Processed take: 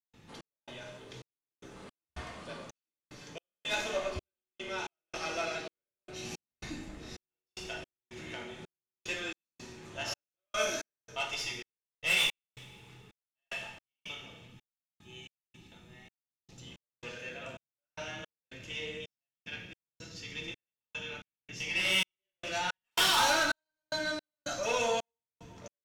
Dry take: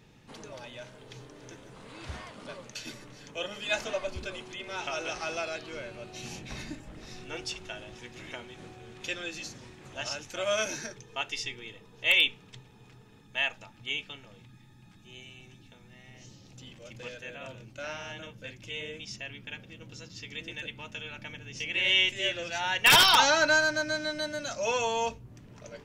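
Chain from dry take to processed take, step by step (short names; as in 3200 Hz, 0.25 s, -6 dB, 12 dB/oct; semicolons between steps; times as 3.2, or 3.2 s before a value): tube stage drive 25 dB, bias 0.5; two-slope reverb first 0.77 s, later 2.2 s, DRR -1 dB; step gate ".xx..xxxx.." 111 bpm -60 dB; gain -1.5 dB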